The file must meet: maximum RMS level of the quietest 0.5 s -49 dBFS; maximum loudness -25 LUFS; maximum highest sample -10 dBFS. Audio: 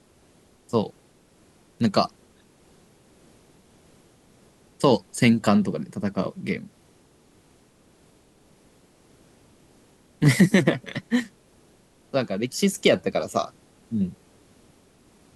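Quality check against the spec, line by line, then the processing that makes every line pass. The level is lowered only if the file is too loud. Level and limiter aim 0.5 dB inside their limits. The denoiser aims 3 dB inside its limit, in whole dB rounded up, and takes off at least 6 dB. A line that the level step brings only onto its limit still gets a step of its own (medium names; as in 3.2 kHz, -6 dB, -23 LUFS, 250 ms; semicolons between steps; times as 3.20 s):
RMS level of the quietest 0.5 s -58 dBFS: pass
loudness -24.0 LUFS: fail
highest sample -6.0 dBFS: fail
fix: trim -1.5 dB; peak limiter -10.5 dBFS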